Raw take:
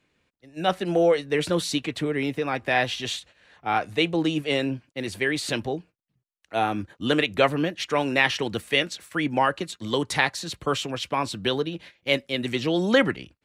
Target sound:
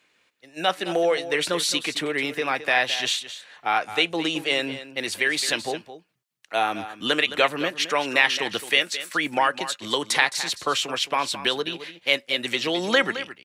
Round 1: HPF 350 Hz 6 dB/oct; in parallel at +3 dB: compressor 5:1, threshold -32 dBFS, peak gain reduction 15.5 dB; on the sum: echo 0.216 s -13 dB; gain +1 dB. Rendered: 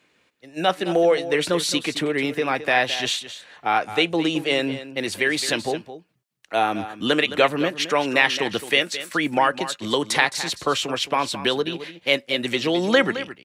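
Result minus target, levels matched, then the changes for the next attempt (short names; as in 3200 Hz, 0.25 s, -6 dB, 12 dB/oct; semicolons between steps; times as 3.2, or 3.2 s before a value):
250 Hz band +4.5 dB
change: HPF 1000 Hz 6 dB/oct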